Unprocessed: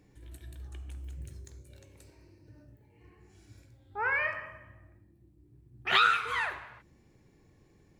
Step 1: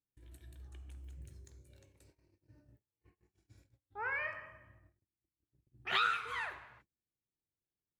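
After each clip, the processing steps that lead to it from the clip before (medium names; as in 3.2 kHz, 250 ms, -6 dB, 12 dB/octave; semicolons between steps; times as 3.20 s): gate -55 dBFS, range -30 dB; trim -8 dB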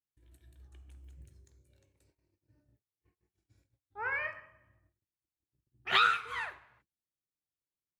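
upward expansion 1.5:1, over -55 dBFS; trim +6.5 dB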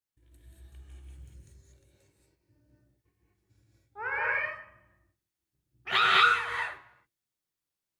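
gated-style reverb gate 260 ms rising, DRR -4.5 dB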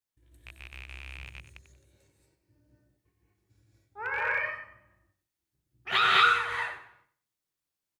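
rattle on loud lows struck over -49 dBFS, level -30 dBFS; feedback delay 93 ms, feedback 27%, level -12.5 dB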